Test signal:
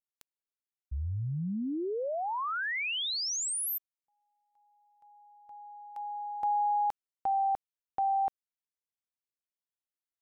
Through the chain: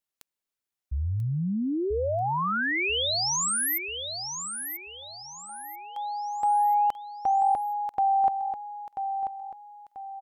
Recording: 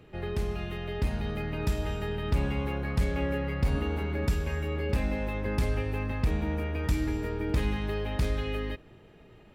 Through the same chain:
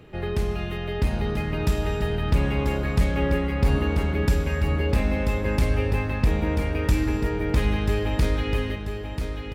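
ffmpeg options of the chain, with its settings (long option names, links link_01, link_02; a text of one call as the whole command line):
ffmpeg -i in.wav -af "aecho=1:1:988|1976|2964|3952:0.422|0.156|0.0577|0.0214,volume=5.5dB" out.wav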